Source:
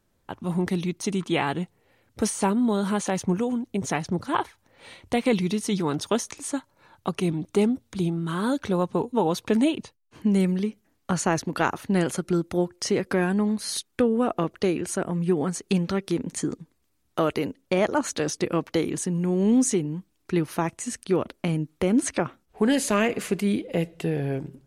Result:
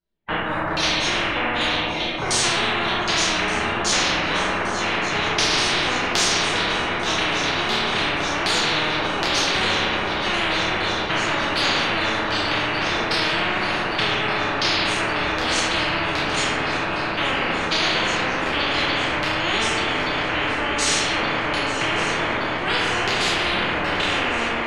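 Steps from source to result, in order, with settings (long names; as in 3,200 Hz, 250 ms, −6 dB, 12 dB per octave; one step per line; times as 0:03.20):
noise gate −48 dBFS, range −38 dB
phase-vocoder pitch shift with formants kept +9.5 semitones
auto-filter low-pass saw down 1.3 Hz 590–4,500 Hz
multi-voice chorus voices 2, 1.4 Hz, delay 29 ms, depth 3 ms
feedback echo with a long and a short gap by turns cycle 1,172 ms, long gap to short 3 to 1, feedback 75%, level −17 dB
convolution reverb RT60 1.0 s, pre-delay 6 ms, DRR −6.5 dB
every bin compressed towards the loudest bin 10 to 1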